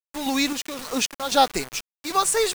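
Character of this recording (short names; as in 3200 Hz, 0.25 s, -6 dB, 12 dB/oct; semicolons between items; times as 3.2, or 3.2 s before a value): random-step tremolo 3.8 Hz, depth 80%; a quantiser's noise floor 6-bit, dither none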